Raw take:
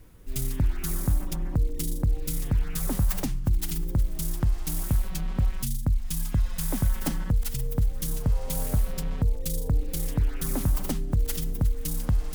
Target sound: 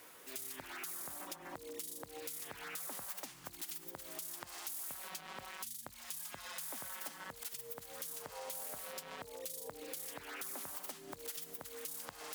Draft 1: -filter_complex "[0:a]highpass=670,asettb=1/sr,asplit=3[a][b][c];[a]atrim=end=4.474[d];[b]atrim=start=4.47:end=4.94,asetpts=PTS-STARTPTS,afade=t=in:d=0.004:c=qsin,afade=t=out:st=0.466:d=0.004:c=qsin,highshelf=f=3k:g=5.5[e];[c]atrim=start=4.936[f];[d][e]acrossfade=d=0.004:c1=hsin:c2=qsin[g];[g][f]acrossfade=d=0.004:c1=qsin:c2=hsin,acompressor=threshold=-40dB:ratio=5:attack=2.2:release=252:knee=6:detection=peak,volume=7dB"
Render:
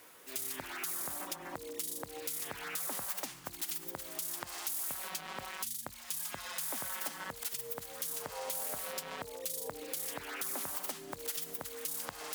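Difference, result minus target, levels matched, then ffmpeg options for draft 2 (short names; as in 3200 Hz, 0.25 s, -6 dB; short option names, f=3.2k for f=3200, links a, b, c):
compressor: peak gain reduction -6.5 dB
-filter_complex "[0:a]highpass=670,asettb=1/sr,asplit=3[a][b][c];[a]atrim=end=4.474[d];[b]atrim=start=4.47:end=4.94,asetpts=PTS-STARTPTS,afade=t=in:d=0.004:c=qsin,afade=t=out:st=0.466:d=0.004:c=qsin,highshelf=f=3k:g=5.5[e];[c]atrim=start=4.936[f];[d][e]acrossfade=d=0.004:c1=hsin:c2=qsin[g];[g][f]acrossfade=d=0.004:c1=qsin:c2=hsin,acompressor=threshold=-48dB:ratio=5:attack=2.2:release=252:knee=6:detection=peak,volume=7dB"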